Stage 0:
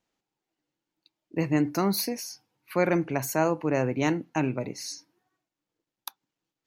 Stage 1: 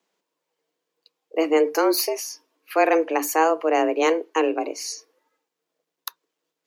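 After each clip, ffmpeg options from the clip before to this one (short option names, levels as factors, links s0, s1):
-af "afreqshift=160,volume=1.88"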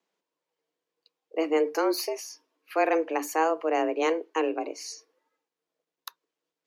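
-af "highshelf=f=9400:g=-9,volume=0.531"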